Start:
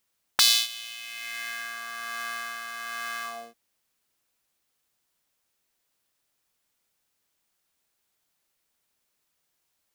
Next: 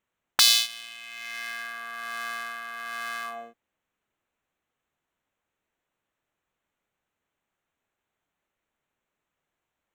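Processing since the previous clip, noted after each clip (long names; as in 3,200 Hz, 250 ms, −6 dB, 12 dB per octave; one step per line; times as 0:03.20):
adaptive Wiener filter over 9 samples
level +1.5 dB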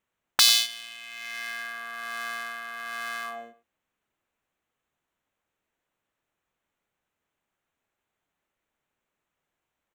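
far-end echo of a speakerphone 100 ms, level −16 dB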